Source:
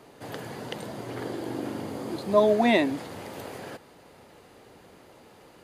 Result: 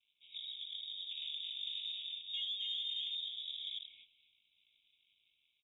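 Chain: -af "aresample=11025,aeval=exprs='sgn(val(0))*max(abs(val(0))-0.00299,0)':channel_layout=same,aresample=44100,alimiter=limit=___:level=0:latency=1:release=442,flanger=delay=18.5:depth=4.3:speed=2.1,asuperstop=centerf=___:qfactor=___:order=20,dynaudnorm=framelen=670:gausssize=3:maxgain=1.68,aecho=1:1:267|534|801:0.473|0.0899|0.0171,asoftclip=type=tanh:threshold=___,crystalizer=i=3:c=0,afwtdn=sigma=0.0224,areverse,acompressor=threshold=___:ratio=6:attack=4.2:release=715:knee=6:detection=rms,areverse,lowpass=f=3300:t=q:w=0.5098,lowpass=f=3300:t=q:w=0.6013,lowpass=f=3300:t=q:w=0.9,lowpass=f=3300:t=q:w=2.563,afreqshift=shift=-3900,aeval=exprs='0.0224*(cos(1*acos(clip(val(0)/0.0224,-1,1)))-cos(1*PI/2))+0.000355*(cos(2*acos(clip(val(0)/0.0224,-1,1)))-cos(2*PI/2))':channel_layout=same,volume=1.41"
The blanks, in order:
0.168, 2600, 1.2, 0.224, 0.01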